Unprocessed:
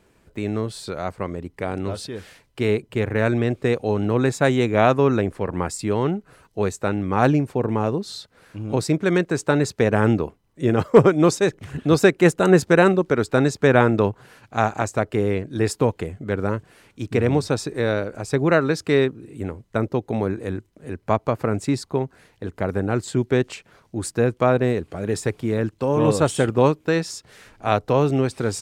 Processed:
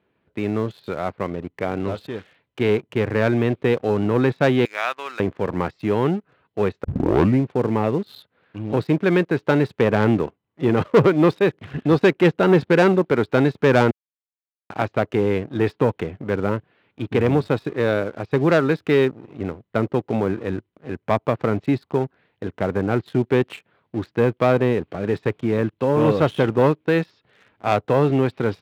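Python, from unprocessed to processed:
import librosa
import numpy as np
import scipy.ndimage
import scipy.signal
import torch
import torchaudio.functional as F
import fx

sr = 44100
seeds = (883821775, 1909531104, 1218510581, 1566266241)

y = fx.highpass(x, sr, hz=1500.0, slope=12, at=(4.65, 5.2))
y = fx.edit(y, sr, fx.tape_start(start_s=6.84, length_s=0.59),
    fx.silence(start_s=13.91, length_s=0.79), tone=tone)
y = scipy.signal.sosfilt(scipy.signal.butter(6, 3700.0, 'lowpass', fs=sr, output='sos'), y)
y = fx.leveller(y, sr, passes=2)
y = scipy.signal.sosfilt(scipy.signal.butter(2, 100.0, 'highpass', fs=sr, output='sos'), y)
y = y * 10.0 ** (-5.0 / 20.0)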